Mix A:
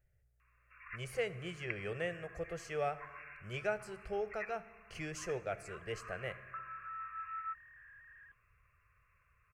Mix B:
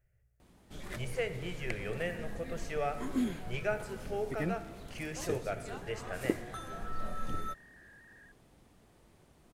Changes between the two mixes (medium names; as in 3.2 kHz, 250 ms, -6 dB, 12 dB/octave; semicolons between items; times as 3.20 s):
speech: send +7.5 dB; first sound: remove brick-wall FIR band-pass 1–2.8 kHz